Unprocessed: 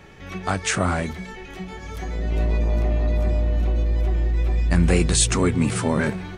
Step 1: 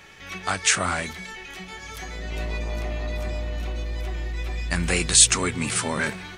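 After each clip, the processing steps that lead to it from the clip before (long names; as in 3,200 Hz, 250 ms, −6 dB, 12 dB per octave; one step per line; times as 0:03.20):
tilt shelving filter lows −7.5 dB
level −1.5 dB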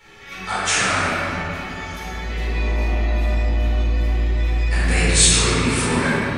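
convolution reverb RT60 3.2 s, pre-delay 4 ms, DRR −12 dB
level −9 dB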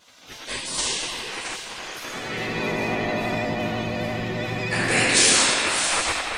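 gate on every frequency bin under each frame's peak −15 dB weak
pitch vibrato 12 Hz 40 cents
delay that swaps between a low-pass and a high-pass 335 ms, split 1,500 Hz, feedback 53%, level −5.5 dB
level +3 dB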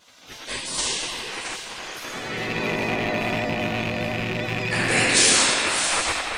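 loose part that buzzes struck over −30 dBFS, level −17 dBFS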